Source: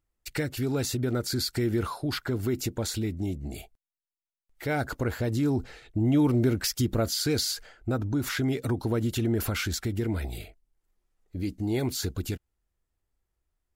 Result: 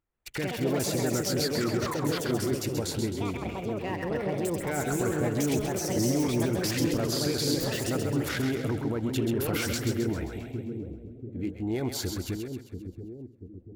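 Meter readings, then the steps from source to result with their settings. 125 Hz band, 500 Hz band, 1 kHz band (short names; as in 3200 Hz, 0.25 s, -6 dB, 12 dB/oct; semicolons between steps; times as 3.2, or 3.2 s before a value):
-2.0 dB, +2.5 dB, +2.5 dB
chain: Wiener smoothing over 9 samples; low shelf 99 Hz -9 dB; limiter -22 dBFS, peak gain reduction 7 dB; echoes that change speed 0.134 s, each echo +4 st, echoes 2; on a send: split-band echo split 480 Hz, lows 0.687 s, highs 0.132 s, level -6 dB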